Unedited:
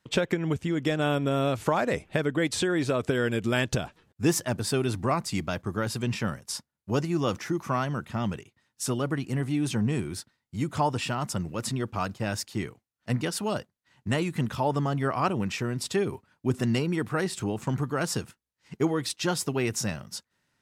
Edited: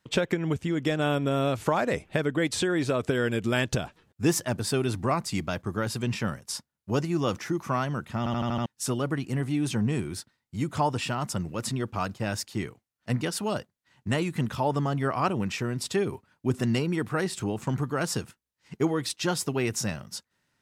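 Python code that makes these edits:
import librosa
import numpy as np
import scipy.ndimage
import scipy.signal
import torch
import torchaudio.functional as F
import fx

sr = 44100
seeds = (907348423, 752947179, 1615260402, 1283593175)

y = fx.edit(x, sr, fx.stutter_over(start_s=8.18, slice_s=0.08, count=6), tone=tone)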